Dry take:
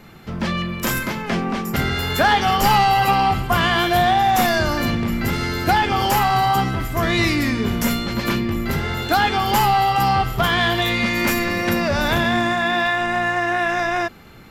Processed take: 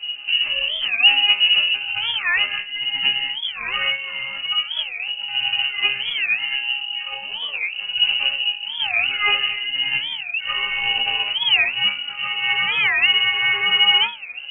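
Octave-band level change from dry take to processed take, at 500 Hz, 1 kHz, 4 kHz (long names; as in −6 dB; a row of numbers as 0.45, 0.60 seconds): −19.0, −15.0, +10.0 decibels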